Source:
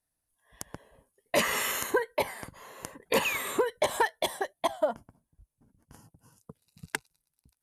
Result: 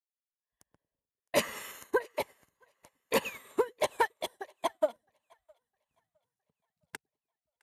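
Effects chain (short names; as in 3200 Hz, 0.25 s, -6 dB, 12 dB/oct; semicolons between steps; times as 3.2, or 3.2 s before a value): split-band echo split 530 Hz, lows 0.101 s, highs 0.661 s, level -12 dB; upward expander 2.5:1, over -44 dBFS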